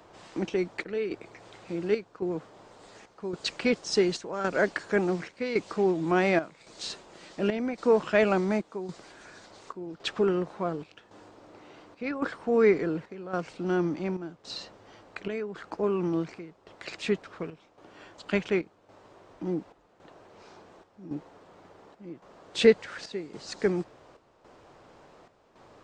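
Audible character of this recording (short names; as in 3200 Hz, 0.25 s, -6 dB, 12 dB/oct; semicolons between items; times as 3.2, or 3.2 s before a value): chopped level 0.9 Hz, depth 65%, duty 75%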